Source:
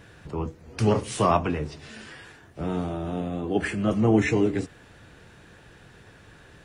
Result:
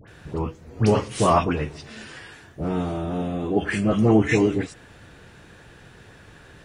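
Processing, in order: phase dispersion highs, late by 79 ms, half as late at 1.4 kHz; trim +3 dB

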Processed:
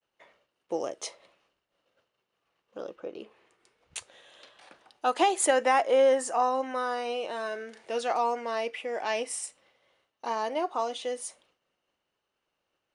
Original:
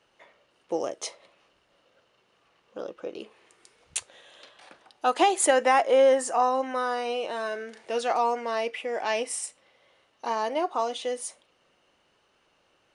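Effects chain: 2.95–3.97 s: treble shelf 3.8 kHz -> 5.3 kHz -10 dB; expander -58 dBFS; trim -2.5 dB

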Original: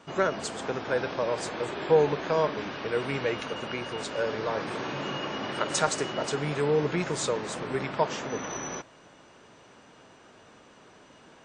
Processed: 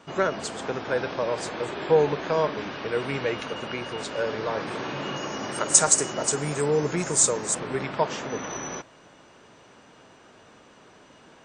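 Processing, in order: 5.16–7.55 s: resonant high shelf 5.4 kHz +13 dB, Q 1.5; trim +1.5 dB

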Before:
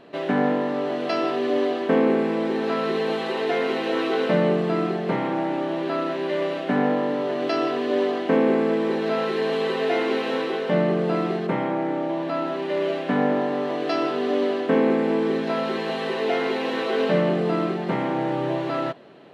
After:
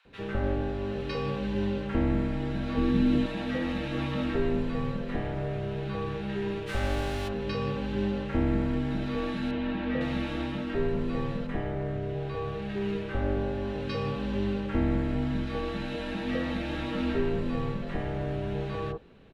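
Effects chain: 6.66–7.27 s: formants flattened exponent 0.6; frequency shift -190 Hz; 2.72–3.21 s: resonant low shelf 470 Hz +7 dB, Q 1.5; 9.51–10.01 s: low-pass 2.9 kHz 12 dB/octave; bands offset in time highs, lows 50 ms, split 1.1 kHz; trim -6.5 dB

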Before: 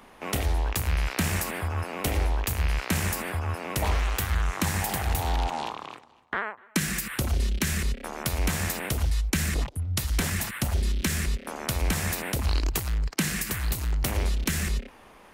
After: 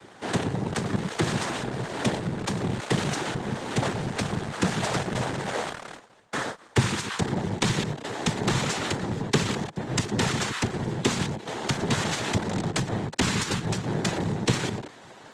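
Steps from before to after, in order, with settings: square wave that keeps the level; noise-vocoded speech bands 6; Opus 24 kbps 48 kHz

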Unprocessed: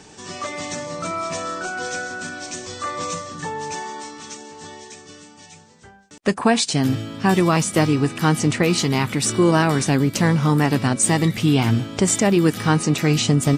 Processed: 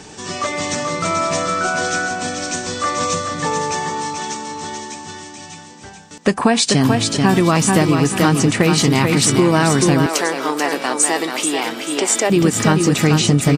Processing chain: feedback delay 435 ms, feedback 28%, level -5.5 dB; compression, threshold -17 dBFS, peak gain reduction 7 dB; 10.06–12.30 s: high-pass 350 Hz 24 dB/octave; trim +7 dB

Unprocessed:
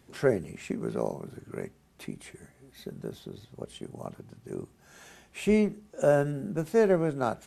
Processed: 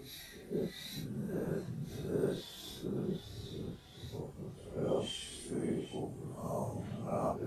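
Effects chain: time reversed locally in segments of 90 ms; Paulstretch 5×, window 0.05 s, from 2.68 s; pre-echo 187 ms -18 dB; trim +2.5 dB

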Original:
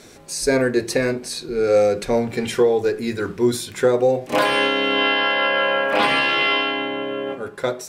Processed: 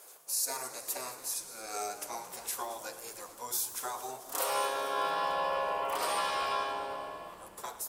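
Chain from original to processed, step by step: high-pass 140 Hz 6 dB/octave; differentiator; spectral gate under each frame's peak -10 dB weak; ten-band graphic EQ 250 Hz -9 dB, 500 Hz +7 dB, 1 kHz +9 dB, 2 kHz -9 dB, 4 kHz -8 dB; frequency-shifting echo 222 ms, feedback 61%, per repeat -120 Hz, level -16 dB; Schroeder reverb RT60 3.1 s, combs from 32 ms, DRR 14.5 dB; modulated delay 106 ms, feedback 35%, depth 210 cents, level -15.5 dB; trim +4.5 dB

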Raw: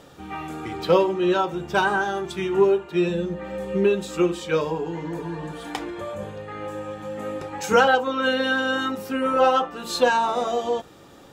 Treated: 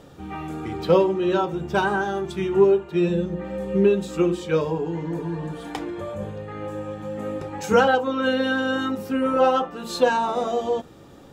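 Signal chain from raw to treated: bass shelf 470 Hz +9 dB; hum notches 60/120/180/240/300/360 Hz; trim -3.5 dB

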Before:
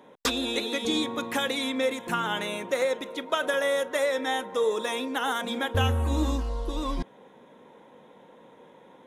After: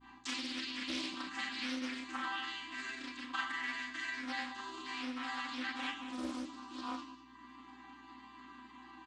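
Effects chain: vocoder on a held chord major triad, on C4; elliptic band-stop 310–840 Hz, stop band 40 dB; tilt EQ +3 dB/octave; upward compressor, threshold -37 dBFS; granulator 100 ms, spray 22 ms, pitch spread up and down by 0 st; hum 60 Hz, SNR 23 dB; on a send: delay 196 ms -12.5 dB; on the sum: Schroeder reverb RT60 0.44 s, combs from 28 ms, DRR -2.5 dB; loudspeaker Doppler distortion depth 0.39 ms; trim -7.5 dB

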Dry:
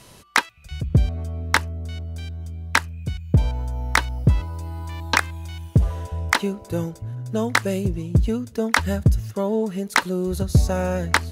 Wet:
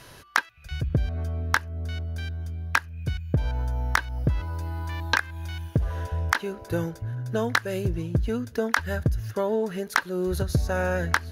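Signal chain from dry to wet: graphic EQ with 31 bands 200 Hz -8 dB, 1.6 kHz +10 dB, 8 kHz -10 dB; compression 5:1, threshold -20 dBFS, peak gain reduction 12 dB

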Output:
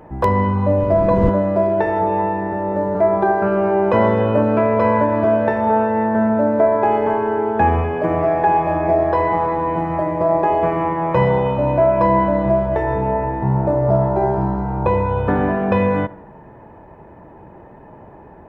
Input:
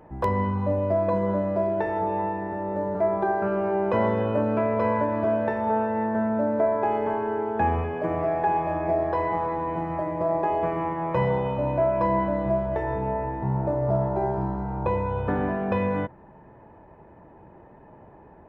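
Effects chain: 0.79–1.29 s: wind noise 210 Hz -26 dBFS; tape echo 73 ms, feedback 64%, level -19 dB, low-pass 2.4 kHz; trim +8 dB

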